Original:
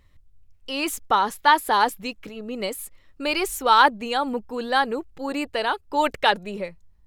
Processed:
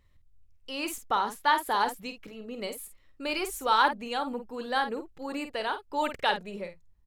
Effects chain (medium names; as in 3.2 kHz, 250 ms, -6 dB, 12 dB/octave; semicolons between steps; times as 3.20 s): doubling 50 ms -9 dB; trim -7.5 dB